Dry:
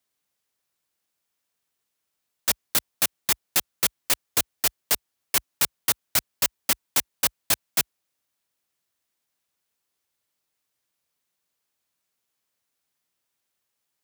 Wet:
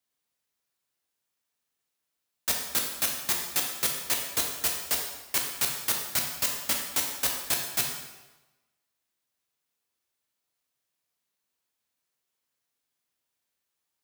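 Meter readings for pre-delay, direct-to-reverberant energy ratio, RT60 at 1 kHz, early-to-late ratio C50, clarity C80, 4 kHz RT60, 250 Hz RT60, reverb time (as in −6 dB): 10 ms, 0.5 dB, 1.1 s, 4.0 dB, 6.0 dB, 0.95 s, 1.1 s, 1.1 s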